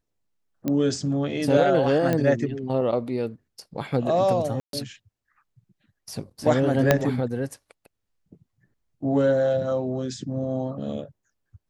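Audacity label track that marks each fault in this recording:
0.680000	0.680000	pop -13 dBFS
2.130000	2.130000	pop -11 dBFS
4.600000	4.730000	gap 0.132 s
6.910000	6.910000	pop -3 dBFS

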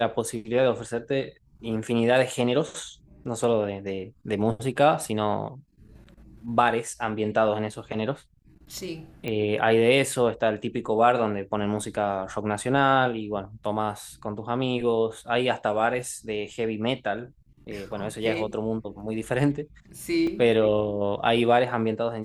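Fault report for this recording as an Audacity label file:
9.280000	9.280000	pop -18 dBFS
20.270000	20.270000	gap 3.3 ms

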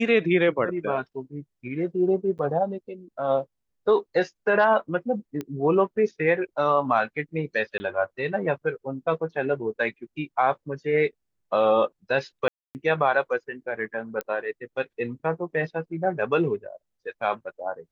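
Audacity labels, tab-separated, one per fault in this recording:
2.380000	2.390000	gap 9.3 ms
5.410000	5.410000	pop -19 dBFS
7.780000	7.800000	gap 20 ms
12.480000	12.750000	gap 0.269 s
14.210000	14.210000	pop -15 dBFS

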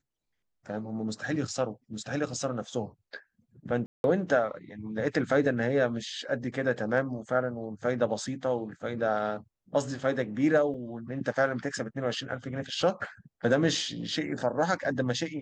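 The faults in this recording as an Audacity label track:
3.860000	4.040000	gap 0.181 s
10.740000	10.740000	gap 4.3 ms

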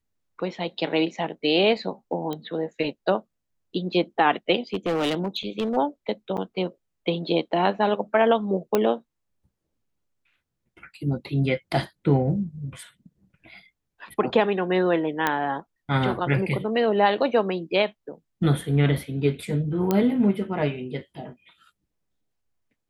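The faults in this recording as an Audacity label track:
2.330000	2.330000	pop -18 dBFS
4.740000	5.770000	clipped -20.5 dBFS
6.370000	6.380000	gap 7.4 ms
8.750000	8.750000	pop -8 dBFS
15.270000	15.270000	pop -8 dBFS
19.910000	19.910000	pop -9 dBFS

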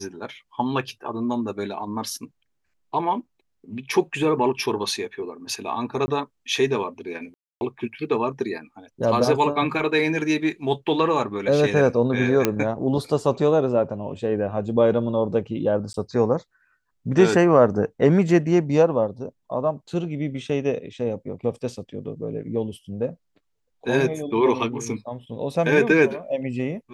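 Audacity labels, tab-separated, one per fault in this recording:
6.060000	6.080000	gap 20 ms
7.340000	7.610000	gap 0.271 s
12.450000	12.450000	pop -4 dBFS
15.930000	15.940000	gap 12 ms

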